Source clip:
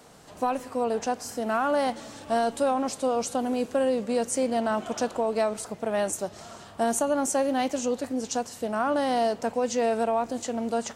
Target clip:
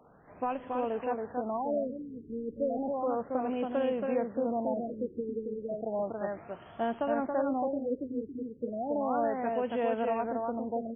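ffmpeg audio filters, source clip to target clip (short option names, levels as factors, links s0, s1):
-filter_complex "[0:a]asplit=2[s0][s1];[s1]aecho=0:1:277:0.668[s2];[s0][s2]amix=inputs=2:normalize=0,afftfilt=real='re*lt(b*sr/1024,470*pow(3500/470,0.5+0.5*sin(2*PI*0.33*pts/sr)))':imag='im*lt(b*sr/1024,470*pow(3500/470,0.5+0.5*sin(2*PI*0.33*pts/sr)))':win_size=1024:overlap=0.75,volume=0.501"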